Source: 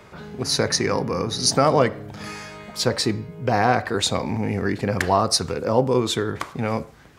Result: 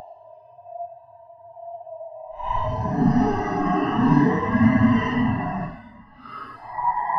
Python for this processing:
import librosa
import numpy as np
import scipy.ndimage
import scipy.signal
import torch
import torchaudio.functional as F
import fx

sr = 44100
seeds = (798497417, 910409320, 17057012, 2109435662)

y = fx.band_swap(x, sr, width_hz=500)
y = y + 0.57 * np.pad(y, (int(7.2 * sr / 1000.0), 0))[:len(y)]
y = fx.paulstretch(y, sr, seeds[0], factor=9.8, window_s=0.05, from_s=3.22)
y = fx.spectral_expand(y, sr, expansion=1.5)